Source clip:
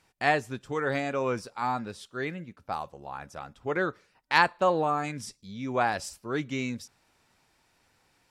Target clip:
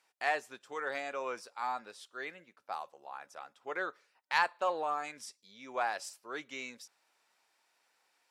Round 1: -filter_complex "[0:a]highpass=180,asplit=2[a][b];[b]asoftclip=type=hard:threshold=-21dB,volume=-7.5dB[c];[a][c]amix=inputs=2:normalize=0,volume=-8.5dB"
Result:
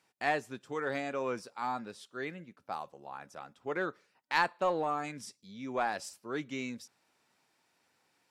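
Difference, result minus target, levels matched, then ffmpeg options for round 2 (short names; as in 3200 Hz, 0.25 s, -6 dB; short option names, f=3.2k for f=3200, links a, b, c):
250 Hz band +9.5 dB
-filter_complex "[0:a]highpass=560,asplit=2[a][b];[b]asoftclip=type=hard:threshold=-21dB,volume=-7.5dB[c];[a][c]amix=inputs=2:normalize=0,volume=-8.5dB"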